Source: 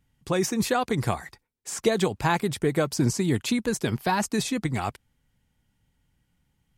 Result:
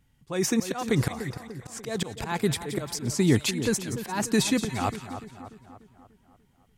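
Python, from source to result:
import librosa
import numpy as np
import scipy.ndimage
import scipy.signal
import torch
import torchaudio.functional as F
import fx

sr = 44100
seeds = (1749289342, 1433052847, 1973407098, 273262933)

y = fx.auto_swell(x, sr, attack_ms=249.0)
y = fx.echo_split(y, sr, split_hz=1500.0, low_ms=294, high_ms=174, feedback_pct=52, wet_db=-10.5)
y = y * librosa.db_to_amplitude(3.5)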